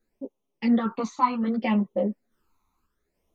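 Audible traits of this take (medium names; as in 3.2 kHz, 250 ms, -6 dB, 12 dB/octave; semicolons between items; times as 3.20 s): phasing stages 12, 0.66 Hz, lowest notch 530–1600 Hz; random-step tremolo; a shimmering, thickened sound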